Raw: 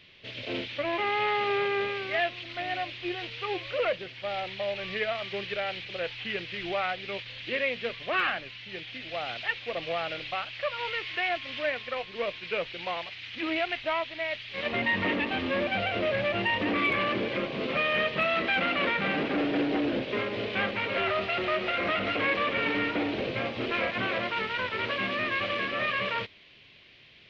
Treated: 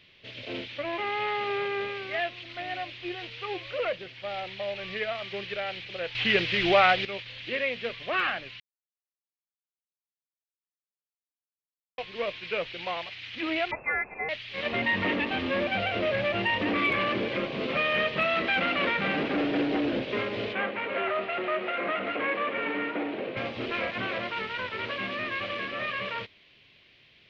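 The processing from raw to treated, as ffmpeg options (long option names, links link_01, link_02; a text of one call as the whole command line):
ffmpeg -i in.wav -filter_complex "[0:a]asettb=1/sr,asplit=3[link_01][link_02][link_03];[link_01]atrim=end=13.714[link_04];[link_02]atrim=start=13.71:end=14.29,asetpts=PTS-STARTPTS,afade=type=in:duration=0.004:curve=qsin,afade=type=out:start_time=0.576:duration=0.004:curve=qsin,lowpass=frequency=2300:width_type=q:width=0.5098,lowpass=frequency=2300:width_type=q:width=0.6013,lowpass=frequency=2300:width_type=q:width=0.9,lowpass=frequency=2300:width_type=q:width=2.563,afreqshift=-2700[link_05];[link_03]atrim=start=14.286[link_06];[link_04][link_05]acrossfade=duration=0.004:curve1=hsin:curve2=qsin[link_07];[link_07][link_06]acrossfade=duration=0.004:curve1=qsin:curve2=hsin,asettb=1/sr,asplit=3[link_08][link_09][link_10];[link_08]atrim=end=20.534[link_11];[link_09]atrim=start=20.53:end=23.37,asetpts=PTS-STARTPTS,afade=type=in:duration=0.004:curve=qsin,afade=type=out:start_time=2.836:duration=0.004:curve=qsin,highpass=230,lowpass=2300[link_12];[link_10]atrim=start=23.366[link_13];[link_11][link_12]acrossfade=duration=0.004:curve1=hsin:curve2=qsin[link_14];[link_14][link_13]acrossfade=duration=0.004:curve1=qsin:curve2=hsin,asplit=5[link_15][link_16][link_17][link_18][link_19];[link_15]atrim=end=6.152[link_20];[link_16]atrim=start=6.148:end=7.052,asetpts=PTS-STARTPTS,volume=10.5dB[link_21];[link_17]atrim=start=7.048:end=8.6,asetpts=PTS-STARTPTS,afade=type=out:start_time=1.548:duration=0.004:curve=hsin[link_22];[link_18]atrim=start=8.6:end=11.98,asetpts=PTS-STARTPTS,volume=0[link_23];[link_19]atrim=start=11.98,asetpts=PTS-STARTPTS,afade=type=in:duration=0.004:curve=hsin[link_24];[link_20][link_21]acrossfade=duration=0.004:curve1=hsin:curve2=hsin[link_25];[link_22][link_23][link_24]concat=n=3:v=0:a=1[link_26];[link_25][link_26]acrossfade=duration=0.004:curve1=hsin:curve2=hsin,dynaudnorm=framelen=990:gausssize=11:maxgain=3dB,volume=-2.5dB" out.wav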